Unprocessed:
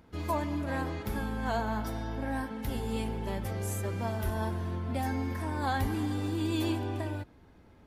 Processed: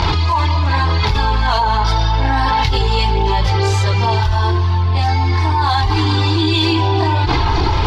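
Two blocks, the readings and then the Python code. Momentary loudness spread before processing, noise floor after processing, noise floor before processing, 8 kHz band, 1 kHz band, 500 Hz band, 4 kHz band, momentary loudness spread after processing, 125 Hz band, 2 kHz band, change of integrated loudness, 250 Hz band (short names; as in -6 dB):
5 LU, -15 dBFS, -57 dBFS, +11.0 dB, +20.5 dB, +14.0 dB, +25.5 dB, 1 LU, +20.0 dB, +17.5 dB, +18.0 dB, +10.5 dB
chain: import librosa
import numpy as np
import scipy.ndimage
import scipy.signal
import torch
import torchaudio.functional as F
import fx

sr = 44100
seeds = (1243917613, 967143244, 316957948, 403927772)

p1 = fx.curve_eq(x, sr, hz=(150.0, 240.0, 370.0, 600.0, 890.0, 1600.0, 4600.0, 9200.0, 15000.0), db=(0, -13, 0, -9, 10, 0, 13, -15, -28))
p2 = np.clip(10.0 ** (23.5 / 20.0) * p1, -1.0, 1.0) / 10.0 ** (23.5 / 20.0)
p3 = p1 + (p2 * 10.0 ** (-5.0 / 20.0))
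p4 = fx.chorus_voices(p3, sr, voices=6, hz=0.57, base_ms=24, depth_ms=1.8, mix_pct=65)
p5 = fx.env_flatten(p4, sr, amount_pct=100)
y = p5 * 10.0 ** (4.5 / 20.0)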